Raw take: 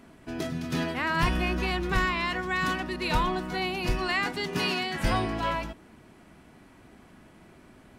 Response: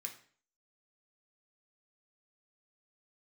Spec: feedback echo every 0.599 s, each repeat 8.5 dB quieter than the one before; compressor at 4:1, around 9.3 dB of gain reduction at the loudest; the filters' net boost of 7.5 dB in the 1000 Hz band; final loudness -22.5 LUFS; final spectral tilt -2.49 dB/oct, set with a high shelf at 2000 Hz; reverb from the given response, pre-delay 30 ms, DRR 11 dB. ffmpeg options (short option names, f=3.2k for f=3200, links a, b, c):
-filter_complex "[0:a]equalizer=f=1k:t=o:g=8,highshelf=f=2k:g=3,acompressor=threshold=-27dB:ratio=4,aecho=1:1:599|1198|1797|2396:0.376|0.143|0.0543|0.0206,asplit=2[a][b];[1:a]atrim=start_sample=2205,adelay=30[c];[b][c]afir=irnorm=-1:irlink=0,volume=-8dB[d];[a][d]amix=inputs=2:normalize=0,volume=7dB"